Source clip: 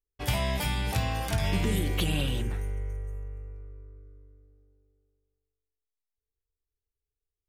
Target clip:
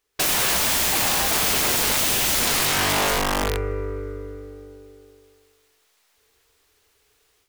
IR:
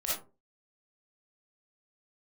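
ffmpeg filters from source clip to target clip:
-filter_complex "[0:a]asplit=2[link_01][link_02];[link_02]highpass=frequency=720:poles=1,volume=29dB,asoftclip=type=tanh:threshold=-14.5dB[link_03];[link_01][link_03]amix=inputs=2:normalize=0,lowpass=frequency=4900:poles=1,volume=-6dB,dynaudnorm=framelen=140:gausssize=3:maxgain=13dB,aeval=exprs='(mod(6.31*val(0)+1,2)-1)/6.31':channel_layout=same"

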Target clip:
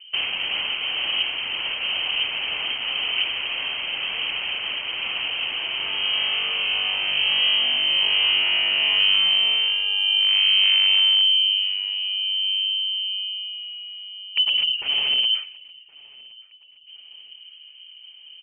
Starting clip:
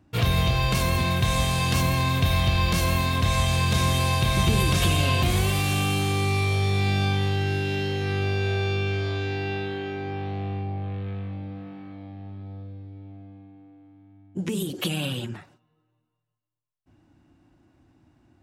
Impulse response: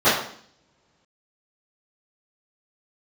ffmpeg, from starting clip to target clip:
-filter_complex "[0:a]acrossover=split=150|2300[link_01][link_02][link_03];[link_02]acompressor=threshold=-37dB:ratio=12[link_04];[link_01][link_04][link_03]amix=inputs=3:normalize=0,aeval=exprs='(mod(21.1*val(0)+1,2)-1)/21.1':channel_layout=same,aecho=1:1:1069|2138|3207:0.0631|0.0297|0.0139,lowpass=frequency=2700:width_type=q:width=0.5098,lowpass=frequency=2700:width_type=q:width=0.6013,lowpass=frequency=2700:width_type=q:width=0.9,lowpass=frequency=2700:width_type=q:width=2.563,afreqshift=-3200,aexciter=amount=9.3:drive=2.3:freq=2500"

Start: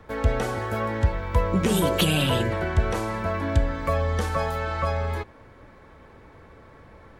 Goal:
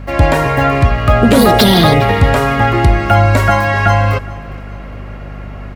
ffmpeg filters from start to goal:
ffmpeg -i in.wav -filter_complex "[0:a]acrossover=split=2300[link_01][link_02];[link_01]dynaudnorm=framelen=140:gausssize=3:maxgain=4.5dB[link_03];[link_03][link_02]amix=inputs=2:normalize=0,asetrate=55125,aresample=44100,aecho=1:1:410|820|1230:0.0891|0.0374|0.0157,aeval=exprs='val(0)+0.0141*(sin(2*PI*50*n/s)+sin(2*PI*2*50*n/s)/2+sin(2*PI*3*50*n/s)/3+sin(2*PI*4*50*n/s)/4+sin(2*PI*5*50*n/s)/5)':channel_layout=same,apsyclip=12dB,volume=-1.5dB" out.wav

